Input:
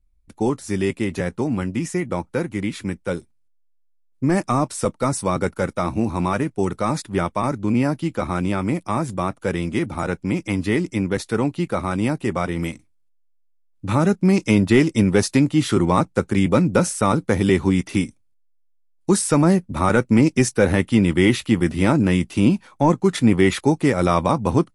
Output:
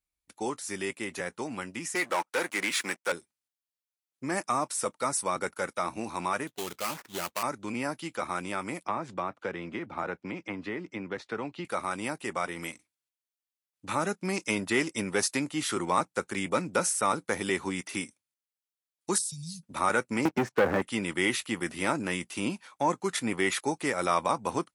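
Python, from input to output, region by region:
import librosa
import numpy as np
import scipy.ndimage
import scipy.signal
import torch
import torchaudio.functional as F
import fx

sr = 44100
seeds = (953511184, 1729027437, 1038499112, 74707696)

y = fx.chain(x, sr, fx.weighting(curve='A'),
    fx.leveller(passes=3), at=(1.95, 3.12))
y = fx.chain(y, sr, fx.high_shelf(hz=3600.0, db=-11.5),
    fx.sample_hold(seeds[0], rate_hz=3600.0, jitter_pct=20),
    fx.tube_stage(drive_db=15.0, bias=0.4), at=(6.47, 7.43))
y = fx.chain(y, sr, fx.spacing_loss(db_at_10k=31),
    fx.band_squash(depth_pct=100), at=(8.85, 11.65))
y = fx.chain(y, sr, fx.cheby1_bandstop(low_hz=160.0, high_hz=3900.0, order=4),
    fx.high_shelf(hz=6000.0, db=-10.0),
    fx.band_squash(depth_pct=40), at=(19.18, 19.63))
y = fx.chain(y, sr, fx.lowpass(hz=1200.0, slope=12),
    fx.leveller(passes=2),
    fx.band_squash(depth_pct=100), at=(20.25, 20.82))
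y = fx.highpass(y, sr, hz=1500.0, slope=6)
y = fx.dynamic_eq(y, sr, hz=3600.0, q=0.82, threshold_db=-42.0, ratio=4.0, max_db=-5)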